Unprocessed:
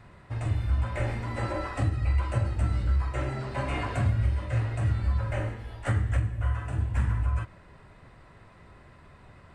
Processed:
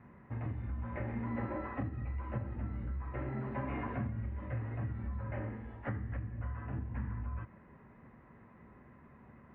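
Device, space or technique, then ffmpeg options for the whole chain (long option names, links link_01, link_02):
bass amplifier: -af "acompressor=threshold=-28dB:ratio=5,highpass=65,equalizer=frequency=94:width_type=q:width=4:gain=-7,equalizer=frequency=230:width_type=q:width=4:gain=10,equalizer=frequency=650:width_type=q:width=4:gain=-5,equalizer=frequency=1400:width_type=q:width=4:gain=-5,lowpass=frequency=2000:width=0.5412,lowpass=frequency=2000:width=1.3066,volume=-4dB"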